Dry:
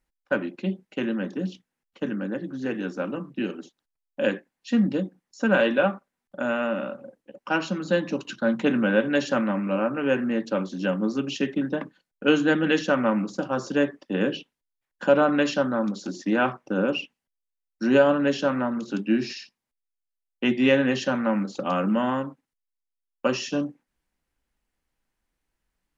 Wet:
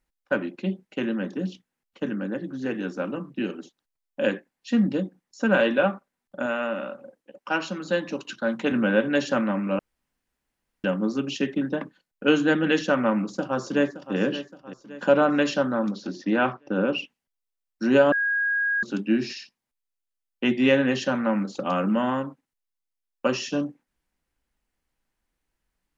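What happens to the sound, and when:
6.46–8.72 s: bass shelf 280 Hz -7.5 dB
9.79–10.84 s: room tone
13.13–14.16 s: echo throw 570 ms, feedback 50%, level -13 dB
15.91–16.98 s: low-pass 5.4 kHz 24 dB/octave
18.12–18.83 s: bleep 1.64 kHz -21 dBFS

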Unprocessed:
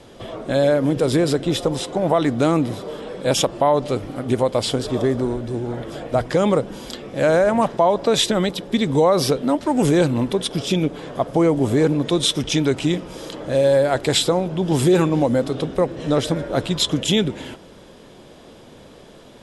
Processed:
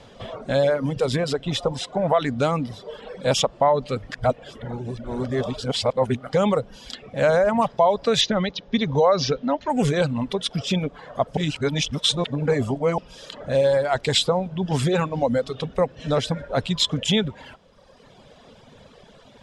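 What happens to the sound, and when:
4.12–6.33 s: reverse
8.21–9.70 s: steep low-pass 6.8 kHz 96 dB/octave
11.37–12.98 s: reverse
whole clip: low-pass 6.5 kHz 12 dB/octave; peaking EQ 330 Hz -14 dB 0.36 oct; reverb removal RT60 1.3 s

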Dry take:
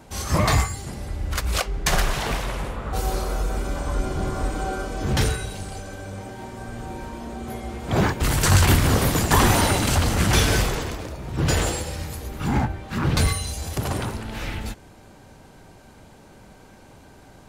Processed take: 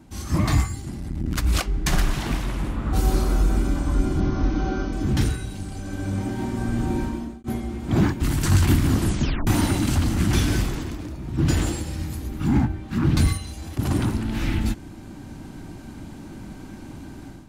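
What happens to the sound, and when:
0.80–1.37 s: transformer saturation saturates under 290 Hz
4.20–4.93 s: brick-wall FIR low-pass 6.7 kHz
6.99–7.44 s: fade out
8.96 s: tape stop 0.51 s
13.37–13.79 s: tone controls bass -6 dB, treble -7 dB
whole clip: resonant low shelf 380 Hz +6 dB, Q 3; level rider; attacks held to a fixed rise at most 460 dB/s; trim -7.5 dB

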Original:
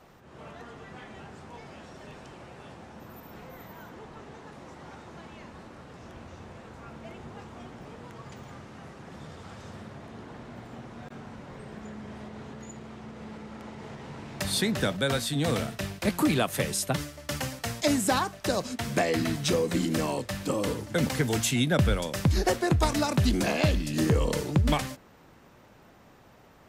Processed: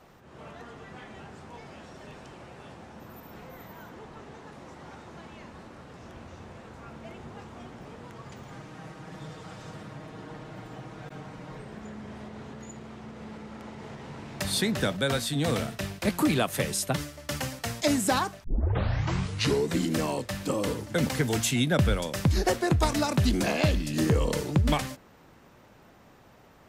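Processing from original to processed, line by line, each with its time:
8.51–11.62 s: comb 6.4 ms, depth 71%
18.44 s: tape start 1.32 s

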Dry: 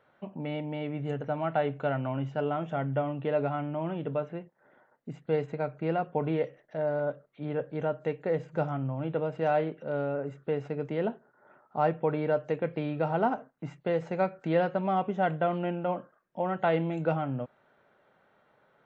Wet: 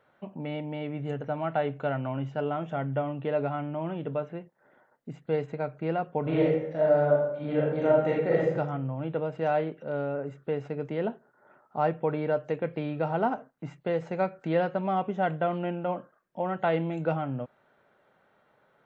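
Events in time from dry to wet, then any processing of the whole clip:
6.22–8.53 s: reverb throw, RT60 0.85 s, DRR -5.5 dB

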